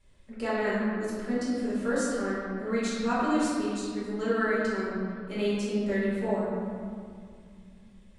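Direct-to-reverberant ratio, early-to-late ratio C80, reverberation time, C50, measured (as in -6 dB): -9.5 dB, -0.5 dB, 2.2 s, -2.5 dB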